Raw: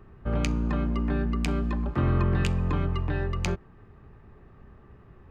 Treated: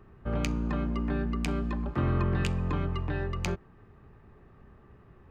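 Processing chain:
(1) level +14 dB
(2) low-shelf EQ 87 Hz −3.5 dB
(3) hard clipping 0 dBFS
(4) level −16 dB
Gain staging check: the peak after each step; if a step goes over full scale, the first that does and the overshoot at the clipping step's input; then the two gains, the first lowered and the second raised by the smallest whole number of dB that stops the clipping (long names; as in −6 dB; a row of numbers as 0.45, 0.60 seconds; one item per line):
+2.5, +3.0, 0.0, −16.0 dBFS
step 1, 3.0 dB
step 1 +11 dB, step 4 −13 dB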